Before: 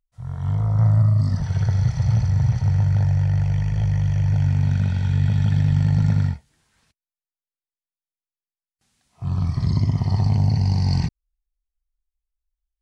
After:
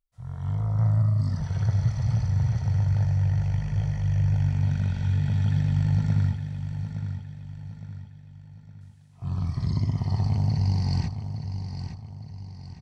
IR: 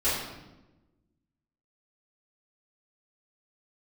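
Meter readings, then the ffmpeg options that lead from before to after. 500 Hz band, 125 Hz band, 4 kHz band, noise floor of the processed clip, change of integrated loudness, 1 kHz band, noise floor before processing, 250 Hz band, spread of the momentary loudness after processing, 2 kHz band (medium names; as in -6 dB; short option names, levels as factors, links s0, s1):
-5.0 dB, -4.5 dB, no reading, -47 dBFS, -5.5 dB, -5.0 dB, under -85 dBFS, -5.0 dB, 16 LU, -5.0 dB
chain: -af "aecho=1:1:863|1726|2589|3452|4315:0.355|0.153|0.0656|0.0282|0.0121,volume=0.531"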